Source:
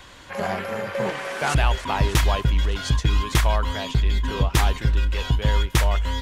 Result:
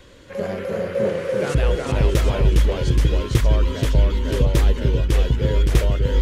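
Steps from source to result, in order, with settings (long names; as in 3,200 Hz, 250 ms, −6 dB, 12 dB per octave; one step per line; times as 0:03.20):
delay with pitch and tempo change per echo 281 ms, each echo −1 semitone, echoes 2
low shelf with overshoot 630 Hz +6.5 dB, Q 3
level −5.5 dB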